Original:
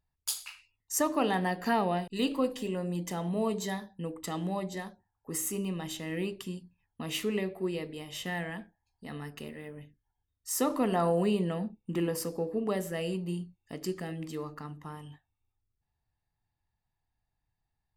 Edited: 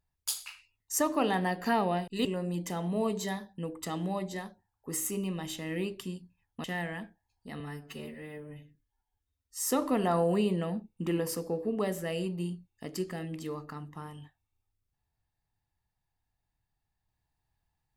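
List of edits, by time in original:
2.25–2.66 s: delete
7.05–8.21 s: delete
9.17–10.54 s: stretch 1.5×

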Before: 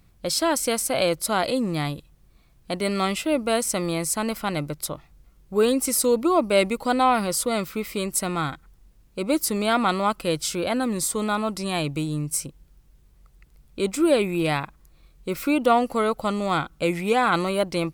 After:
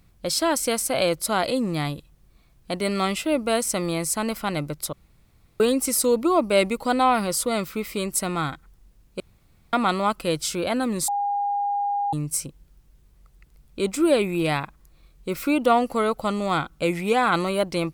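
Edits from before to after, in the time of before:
4.93–5.60 s: room tone
9.20–9.73 s: room tone
11.08–12.13 s: bleep 811 Hz -21.5 dBFS

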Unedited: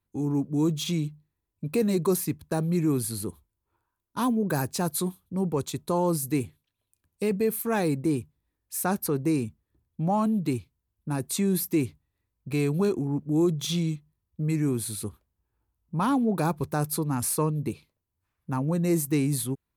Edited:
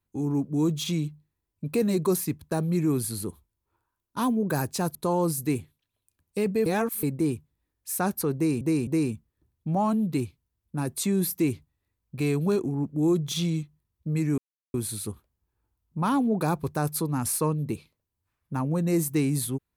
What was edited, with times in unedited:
4.95–5.80 s: delete
7.51–7.88 s: reverse
9.20–9.46 s: loop, 3 plays
14.71 s: insert silence 0.36 s

